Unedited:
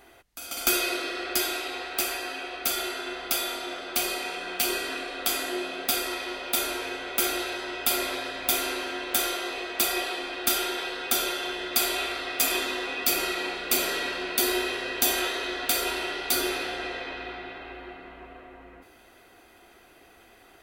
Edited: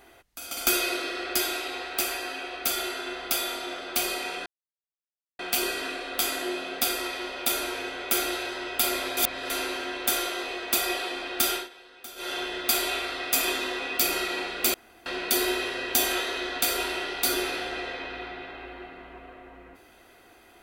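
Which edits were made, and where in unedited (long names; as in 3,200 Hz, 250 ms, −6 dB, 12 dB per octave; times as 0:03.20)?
0:04.46: splice in silence 0.93 s
0:08.24–0:08.57: reverse
0:10.60–0:11.39: duck −17.5 dB, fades 0.16 s
0:13.81–0:14.13: fill with room tone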